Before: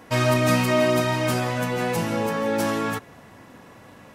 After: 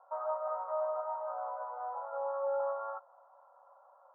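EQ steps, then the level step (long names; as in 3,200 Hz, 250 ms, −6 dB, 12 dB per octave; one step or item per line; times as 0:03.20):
Chebyshev high-pass with heavy ripple 540 Hz, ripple 6 dB
Chebyshev low-pass with heavy ripple 1,400 Hz, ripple 6 dB
high-frequency loss of the air 340 metres
0.0 dB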